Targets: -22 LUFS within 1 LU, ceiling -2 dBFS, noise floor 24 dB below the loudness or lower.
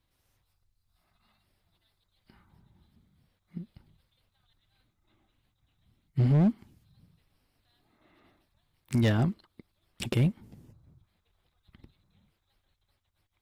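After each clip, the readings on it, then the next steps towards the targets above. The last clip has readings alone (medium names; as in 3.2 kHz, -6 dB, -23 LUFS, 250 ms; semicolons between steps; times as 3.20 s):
clipped samples 0.6%; clipping level -19.0 dBFS; loudness -27.5 LUFS; peak level -19.0 dBFS; loudness target -22.0 LUFS
-> clip repair -19 dBFS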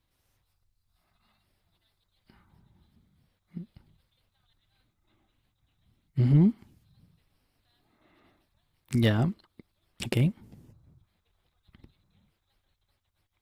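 clipped samples 0.0%; loudness -26.5 LUFS; peak level -10.0 dBFS; loudness target -22.0 LUFS
-> trim +4.5 dB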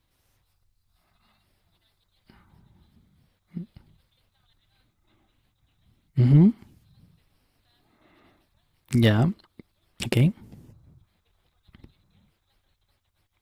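loudness -22.0 LUFS; peak level -5.5 dBFS; noise floor -73 dBFS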